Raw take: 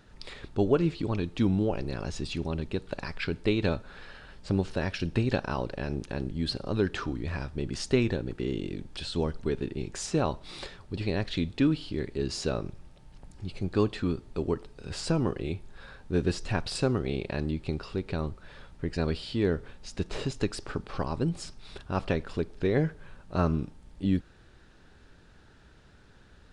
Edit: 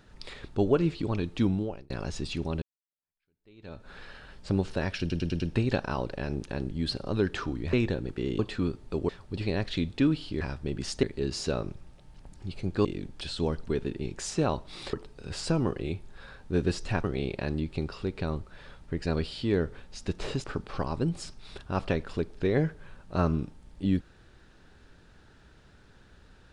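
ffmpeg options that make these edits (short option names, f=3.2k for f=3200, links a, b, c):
-filter_complex "[0:a]asplit=16[a][b][c][d][e][f][g][h][i][j][k][l][m][n][o][p];[a]atrim=end=1.9,asetpts=PTS-STARTPTS,afade=t=out:st=1.44:d=0.46[q];[b]atrim=start=1.9:end=2.62,asetpts=PTS-STARTPTS,afade=t=in:d=0.004:c=hsin,afade=t=out:st=0.716:d=0.004:c=hsin[r];[c]atrim=start=2.62:end=5.102,asetpts=PTS-STARTPTS,afade=t=in:d=1.28:c=exp[s];[d]atrim=start=4.998:end=5.102[t];[e]atrim=start=4.998:end=5.102[u];[f]atrim=start=4.998:end=5.102[v];[g]atrim=start=4.998:end=7.332[w];[h]atrim=start=7.948:end=8.612[x];[i]atrim=start=13.828:end=14.532[y];[j]atrim=start=10.688:end=12.012[z];[k]atrim=start=7.328:end=7.952[aa];[l]atrim=start=12.008:end=13.832[ab];[m]atrim=start=8.608:end=10.692[ac];[n]atrim=start=14.528:end=16.642[ad];[o]atrim=start=16.948:end=20.352[ae];[p]atrim=start=20.638[af];[q][r][s]concat=n=3:v=0:a=1[ag];[ag][t]acrossfade=d=0.004:c1=hsin:c2=hsin[ah];[ah][u]acrossfade=d=0.004:c1=hsin:c2=hsin[ai];[ai][v]acrossfade=d=0.004:c1=hsin:c2=hsin[aj];[aj][w]acrossfade=d=0.004:c1=hsin:c2=hsin[ak];[ak][x]acrossfade=d=0.004:c1=hsin:c2=hsin[al];[al][y]acrossfade=d=0.004:c1=hsin:c2=hsin[am];[am][z]acrossfade=d=0.004:c1=hsin:c2=hsin[an];[an][aa]acrossfade=d=0.004:c1=hsin:c2=hsin[ao];[ao][ab]acrossfade=d=0.004:c1=hsin:c2=hsin[ap];[ap][ac]acrossfade=d=0.004:c1=hsin:c2=hsin[aq];[aq][ad]acrossfade=d=0.004:c1=hsin:c2=hsin[ar];[ar][ae]acrossfade=d=0.004:c1=hsin:c2=hsin[as];[as][af]acrossfade=d=0.004:c1=hsin:c2=hsin"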